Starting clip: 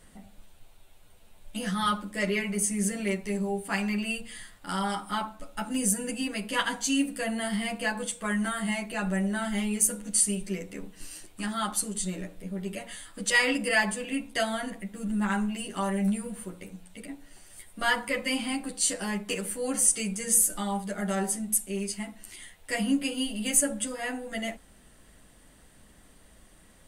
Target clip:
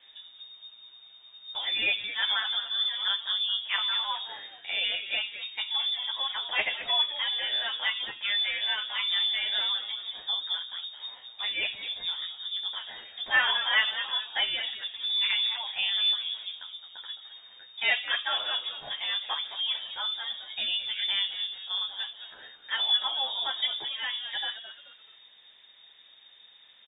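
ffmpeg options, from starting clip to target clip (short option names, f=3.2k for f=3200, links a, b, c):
-filter_complex "[0:a]asplit=2[a][b];[b]asplit=3[c][d][e];[c]adelay=215,afreqshift=120,volume=-12dB[f];[d]adelay=430,afreqshift=240,volume=-21.4dB[g];[e]adelay=645,afreqshift=360,volume=-30.7dB[h];[f][g][h]amix=inputs=3:normalize=0[i];[a][i]amix=inputs=2:normalize=0,lowpass=f=3.1k:t=q:w=0.5098,lowpass=f=3.1k:t=q:w=0.6013,lowpass=f=3.1k:t=q:w=0.9,lowpass=f=3.1k:t=q:w=2.563,afreqshift=-3700"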